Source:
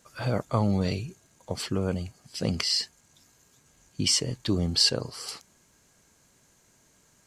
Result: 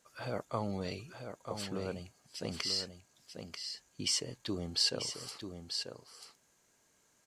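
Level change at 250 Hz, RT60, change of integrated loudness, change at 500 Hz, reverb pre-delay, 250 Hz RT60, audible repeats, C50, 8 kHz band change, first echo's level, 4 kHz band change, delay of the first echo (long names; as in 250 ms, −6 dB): −11.5 dB, no reverb audible, −9.5 dB, −7.5 dB, no reverb audible, no reverb audible, 1, no reverb audible, −7.5 dB, −7.5 dB, −7.5 dB, 939 ms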